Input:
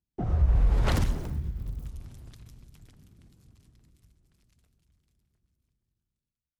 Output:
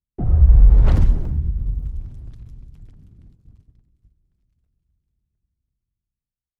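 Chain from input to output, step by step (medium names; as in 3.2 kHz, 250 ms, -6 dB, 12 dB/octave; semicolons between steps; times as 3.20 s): gate -57 dBFS, range -11 dB; tilt EQ -3 dB/octave; trim -1 dB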